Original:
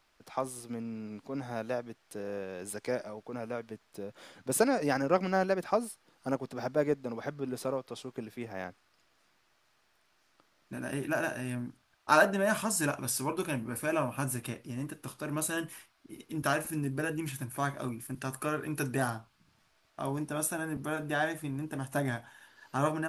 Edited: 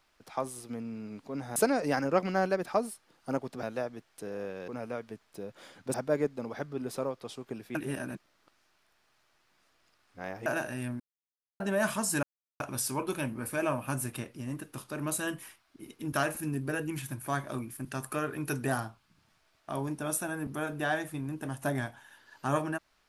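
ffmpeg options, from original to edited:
ffmpeg -i in.wav -filter_complex "[0:a]asplit=10[link_01][link_02][link_03][link_04][link_05][link_06][link_07][link_08][link_09][link_10];[link_01]atrim=end=1.562[link_11];[link_02]atrim=start=4.538:end=6.612[link_12];[link_03]atrim=start=1.558:end=2.612[link_13];[link_04]atrim=start=3.278:end=4.542[link_14];[link_05]atrim=start=6.608:end=8.422[link_15];[link_06]atrim=start=8.418:end=11.132,asetpts=PTS-STARTPTS,areverse[link_16];[link_07]atrim=start=11.128:end=11.67,asetpts=PTS-STARTPTS,afade=type=out:start_time=0.538:duration=0.004:curve=hsin[link_17];[link_08]atrim=start=11.67:end=12.27,asetpts=PTS-STARTPTS,volume=0[link_18];[link_09]atrim=start=12.27:end=12.9,asetpts=PTS-STARTPTS,afade=type=in:duration=0.004:curve=hsin,afade=type=out:start_time=0.626:duration=0.004:curve=hsin,apad=pad_dur=0.37[link_19];[link_10]atrim=start=12.9,asetpts=PTS-STARTPTS,afade=type=in:duration=0.004:curve=hsin[link_20];[link_11][link_12]acrossfade=duration=0.004:curve1=hsin:curve2=hsin[link_21];[link_21][link_13]acrossfade=duration=0.004:curve1=hsin:curve2=hsin[link_22];[link_22][link_14]acrossfade=duration=0.004:curve1=hsin:curve2=hsin[link_23];[link_23][link_15]acrossfade=duration=0.004:curve1=hsin:curve2=hsin[link_24];[link_24][link_16]acrossfade=duration=0.004:curve1=hsin:curve2=hsin[link_25];[link_17][link_18][link_19][link_20]concat=n=4:v=0:a=1[link_26];[link_25][link_26]acrossfade=duration=0.004:curve1=hsin:curve2=hsin" out.wav

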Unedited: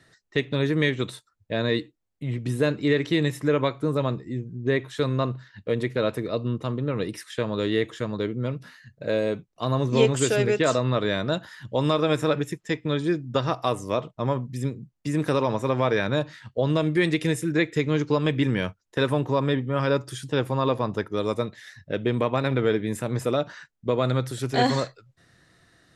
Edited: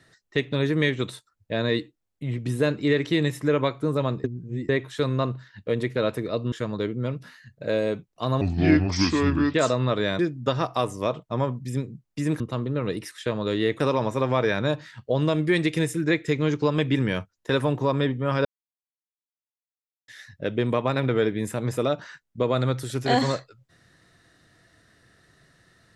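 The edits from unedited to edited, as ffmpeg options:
ffmpeg -i in.wav -filter_complex "[0:a]asplit=11[link_01][link_02][link_03][link_04][link_05][link_06][link_07][link_08][link_09][link_10][link_11];[link_01]atrim=end=4.242[link_12];[link_02]atrim=start=4.238:end=4.692,asetpts=PTS-STARTPTS,areverse[link_13];[link_03]atrim=start=4.688:end=6.522[link_14];[link_04]atrim=start=7.918:end=9.814[link_15];[link_05]atrim=start=9.81:end=10.59,asetpts=PTS-STARTPTS,asetrate=30429,aresample=44100,atrim=end_sample=49852,asetpts=PTS-STARTPTS[link_16];[link_06]atrim=start=10.586:end=11.242[link_17];[link_07]atrim=start=13.068:end=15.282[link_18];[link_08]atrim=start=6.518:end=7.922[link_19];[link_09]atrim=start=15.278:end=19.93,asetpts=PTS-STARTPTS,afade=type=out:start_time=4.648:duration=0.004:curve=hsin[link_20];[link_10]atrim=start=19.93:end=21.56,asetpts=PTS-STARTPTS,volume=0[link_21];[link_11]atrim=start=21.56,asetpts=PTS-STARTPTS,afade=type=in:duration=0.004:curve=hsin[link_22];[link_12][link_13]acrossfade=duration=0.004:curve1=hsin:curve2=hsin[link_23];[link_23][link_14]acrossfade=duration=0.004:curve1=hsin:curve2=hsin[link_24];[link_24][link_15]acrossfade=duration=0.004:curve1=hsin:curve2=hsin[link_25];[link_25][link_16]acrossfade=duration=0.004:curve1=hsin:curve2=hsin[link_26];[link_26][link_17]acrossfade=duration=0.004:curve1=hsin:curve2=hsin[link_27];[link_27][link_18]acrossfade=duration=0.004:curve1=hsin:curve2=hsin[link_28];[link_28][link_19]acrossfade=duration=0.004:curve1=hsin:curve2=hsin[link_29];[link_20][link_21][link_22]concat=n=3:v=0:a=1[link_30];[link_29][link_30]acrossfade=duration=0.004:curve1=hsin:curve2=hsin" out.wav

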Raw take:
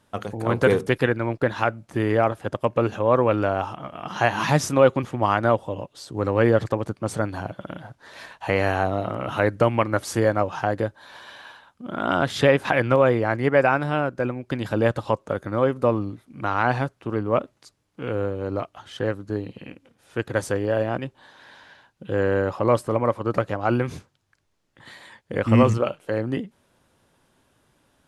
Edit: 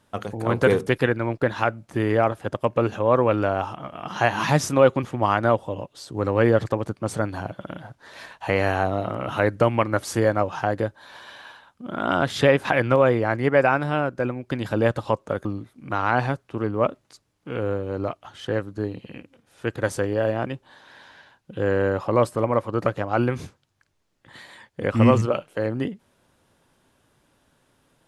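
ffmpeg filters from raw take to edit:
ffmpeg -i in.wav -filter_complex "[0:a]asplit=2[link_01][link_02];[link_01]atrim=end=15.452[link_03];[link_02]atrim=start=15.968[link_04];[link_03][link_04]acrossfade=duration=0.004:curve1=hsin:curve2=hsin" out.wav

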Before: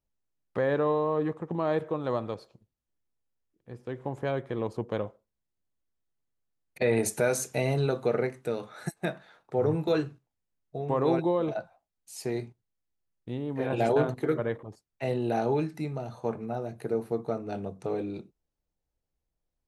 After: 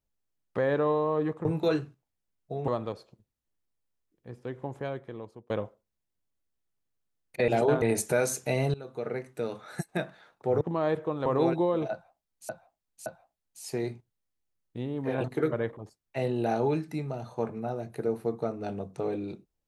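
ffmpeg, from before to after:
ffmpeg -i in.wav -filter_complex "[0:a]asplit=12[link_01][link_02][link_03][link_04][link_05][link_06][link_07][link_08][link_09][link_10][link_11][link_12];[link_01]atrim=end=1.452[link_13];[link_02]atrim=start=9.688:end=10.922[link_14];[link_03]atrim=start=2.098:end=4.92,asetpts=PTS-STARTPTS,afade=type=out:start_time=1.722:duration=1.1:silence=0.0668344[link_15];[link_04]atrim=start=4.92:end=6.902,asetpts=PTS-STARTPTS,afade=type=in:duration=0.004:curve=hsin:silence=0.0668344[link_16];[link_05]atrim=start=13.758:end=14.102[link_17];[link_06]atrim=start=6.898:end=7.82,asetpts=PTS-STARTPTS,afade=type=out:start_time=0.918:duration=0.004:curve=hsin:silence=0.0891251[link_18];[link_07]atrim=start=7.82:end=9.692,asetpts=PTS-STARTPTS,afade=type=in:duration=0.82:silence=0.0891251[link_19];[link_08]atrim=start=1.448:end=2.102[link_20];[link_09]atrim=start=10.918:end=12.152[link_21];[link_10]atrim=start=11.578:end=12.152[link_22];[link_11]atrim=start=11.578:end=13.762[link_23];[link_12]atrim=start=14.098[link_24];[link_13][link_14]acrossfade=duration=0.004:curve1=hsin:curve2=hsin[link_25];[link_15][link_16]concat=n=2:v=0:a=1[link_26];[link_25][link_26]acrossfade=duration=0.004:curve1=hsin:curve2=hsin[link_27];[link_27][link_17]acrossfade=duration=0.004:curve1=hsin:curve2=hsin[link_28];[link_18][link_19]concat=n=2:v=0:a=1[link_29];[link_28][link_29]acrossfade=duration=0.004:curve1=hsin:curve2=hsin[link_30];[link_30][link_20]acrossfade=duration=0.004:curve1=hsin:curve2=hsin[link_31];[link_31][link_21]acrossfade=duration=0.004:curve1=hsin:curve2=hsin[link_32];[link_32][link_22]acrossfade=duration=0.004:curve1=hsin:curve2=hsin[link_33];[link_33][link_23]acrossfade=duration=0.004:curve1=hsin:curve2=hsin[link_34];[link_34][link_24]acrossfade=duration=0.004:curve1=hsin:curve2=hsin" out.wav

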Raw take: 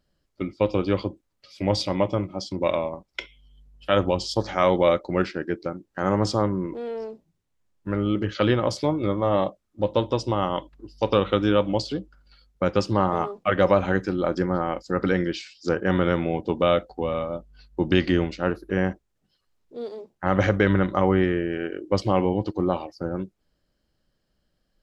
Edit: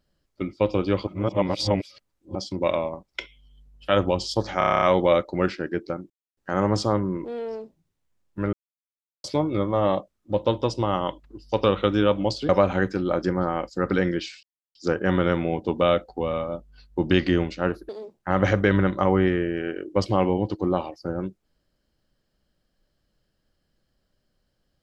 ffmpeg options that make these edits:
ffmpeg -i in.wav -filter_complex "[0:a]asplit=17[link_01][link_02][link_03][link_04][link_05][link_06][link_07][link_08][link_09][link_10][link_11][link_12][link_13][link_14][link_15][link_16][link_17];[link_01]atrim=end=1.072[link_18];[link_02]atrim=start=1.068:end=2.352,asetpts=PTS-STARTPTS,areverse[link_19];[link_03]atrim=start=2.348:end=4.612[link_20];[link_04]atrim=start=4.578:end=4.612[link_21];[link_05]atrim=start=4.578:end=4.612[link_22];[link_06]atrim=start=4.578:end=4.612[link_23];[link_07]atrim=start=4.578:end=4.612[link_24];[link_08]atrim=start=4.578:end=4.612[link_25];[link_09]atrim=start=4.578:end=4.612[link_26];[link_10]atrim=start=4.578:end=4.612[link_27];[link_11]atrim=start=4.578:end=5.86,asetpts=PTS-STARTPTS,afade=type=out:start_time=1.278:duration=0.004:curve=hsin,apad=pad_dur=0.27[link_28];[link_12]atrim=start=5.86:end=8.02,asetpts=PTS-STARTPTS,afade=type=in:duration=0.004:curve=hsin,afade=type=out:start_time=2.156:duration=0.004:curve=hsin[link_29];[link_13]atrim=start=8.02:end=8.73,asetpts=PTS-STARTPTS,volume=0[link_30];[link_14]atrim=start=8.73:end=11.982,asetpts=PTS-STARTPTS,afade=type=in:duration=0.004:curve=hsin[link_31];[link_15]atrim=start=13.618:end=15.56,asetpts=PTS-STARTPTS,afade=type=out:start_time=1.938:duration=0.004:curve=hsin,apad=pad_dur=0.32[link_32];[link_16]atrim=start=15.56:end=18.702,asetpts=PTS-STARTPTS,afade=type=in:duration=0.004:curve=hsin[link_33];[link_17]atrim=start=19.848[link_34];[link_18][link_19]acrossfade=duration=0.004:curve1=hsin:curve2=hsin[link_35];[link_35][link_20]acrossfade=duration=0.004:curve1=hsin:curve2=hsin[link_36];[link_36][link_21]acrossfade=duration=0.004:curve1=hsin:curve2=hsin[link_37];[link_37][link_22]acrossfade=duration=0.004:curve1=hsin:curve2=hsin[link_38];[link_38][link_23]acrossfade=duration=0.004:curve1=hsin:curve2=hsin[link_39];[link_39][link_24]acrossfade=duration=0.004:curve1=hsin:curve2=hsin[link_40];[link_40][link_25]acrossfade=duration=0.004:curve1=hsin:curve2=hsin[link_41];[link_41][link_26]acrossfade=duration=0.004:curve1=hsin:curve2=hsin[link_42];[link_42][link_27]acrossfade=duration=0.004:curve1=hsin:curve2=hsin[link_43];[link_28][link_29][link_30][link_31]concat=n=4:v=0:a=1[link_44];[link_43][link_44]acrossfade=duration=0.004:curve1=hsin:curve2=hsin[link_45];[link_32][link_33]concat=n=2:v=0:a=1[link_46];[link_45][link_46]acrossfade=duration=0.004:curve1=hsin:curve2=hsin[link_47];[link_47][link_34]acrossfade=duration=0.004:curve1=hsin:curve2=hsin" out.wav

